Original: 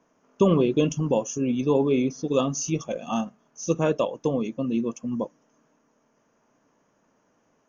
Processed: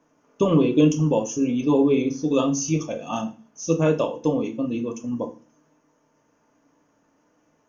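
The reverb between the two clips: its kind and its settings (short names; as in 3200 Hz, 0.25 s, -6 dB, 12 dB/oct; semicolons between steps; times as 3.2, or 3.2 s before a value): FDN reverb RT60 0.35 s, low-frequency decay 1.35×, high-frequency decay 1×, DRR 4 dB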